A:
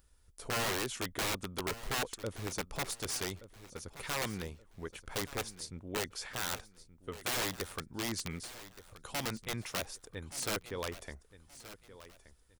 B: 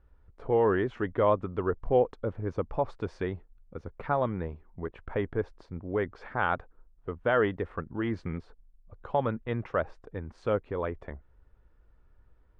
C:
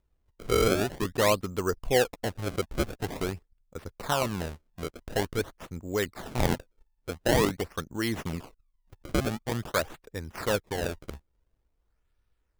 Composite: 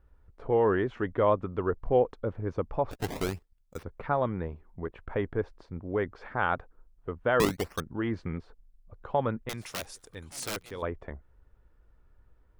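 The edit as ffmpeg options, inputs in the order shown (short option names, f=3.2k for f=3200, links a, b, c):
-filter_complex "[2:a]asplit=2[a][b];[1:a]asplit=4[c][d][e][f];[c]atrim=end=2.912[g];[a]atrim=start=2.908:end=3.832[h];[d]atrim=start=3.828:end=7.402[i];[b]atrim=start=7.398:end=7.802[j];[e]atrim=start=7.798:end=9.492[k];[0:a]atrim=start=9.488:end=10.822[l];[f]atrim=start=10.818[m];[g][h]acrossfade=d=0.004:c1=hsin:c2=hsin[n];[n][i]acrossfade=d=0.004:c1=hsin:c2=hsin[o];[o][j]acrossfade=d=0.004:c1=hsin:c2=hsin[p];[p][k]acrossfade=d=0.004:c1=hsin:c2=hsin[q];[q][l]acrossfade=d=0.004:c1=hsin:c2=hsin[r];[r][m]acrossfade=d=0.004:c1=hsin:c2=hsin"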